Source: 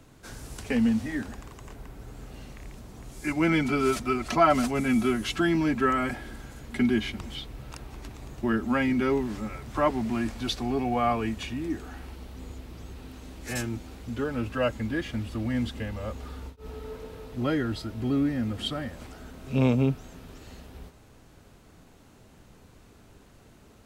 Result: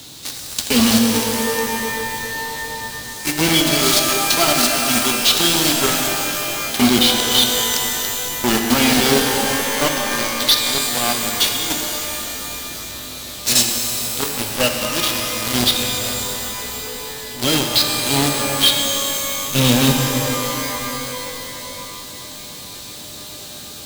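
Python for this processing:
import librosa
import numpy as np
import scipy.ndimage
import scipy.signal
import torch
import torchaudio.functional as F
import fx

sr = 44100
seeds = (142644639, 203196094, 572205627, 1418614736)

p1 = scipy.signal.sosfilt(scipy.signal.butter(2, 76.0, 'highpass', fs=sr, output='sos'), x)
p2 = fx.high_shelf_res(p1, sr, hz=2600.0, db=14.0, q=3.0)
p3 = fx.rider(p2, sr, range_db=10, speed_s=2.0)
p4 = p2 + F.gain(torch.from_numpy(p3), 1.5).numpy()
p5 = fx.quant_companded(p4, sr, bits=2)
p6 = fx.rev_shimmer(p5, sr, seeds[0], rt60_s=3.4, semitones=12, shimmer_db=-2, drr_db=2.5)
y = F.gain(torch.from_numpy(p6), -10.0).numpy()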